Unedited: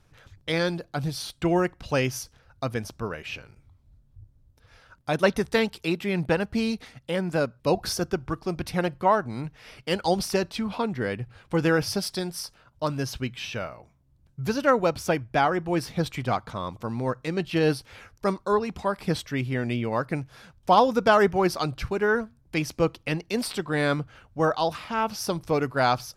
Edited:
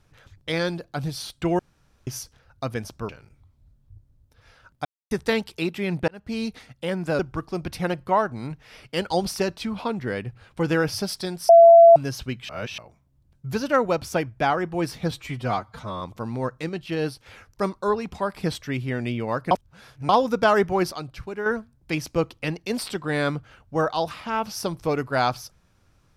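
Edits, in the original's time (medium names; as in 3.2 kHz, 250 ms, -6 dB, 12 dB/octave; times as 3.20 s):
1.59–2.07 s: room tone
3.09–3.35 s: delete
5.11–5.37 s: mute
6.34–6.74 s: fade in
7.45–8.13 s: delete
12.43–12.90 s: bleep 674 Hz -6.5 dBFS
13.43–13.72 s: reverse
16.05–16.65 s: stretch 1.5×
17.33–17.90 s: gain -4 dB
20.15–20.73 s: reverse
21.56–22.10 s: gain -6.5 dB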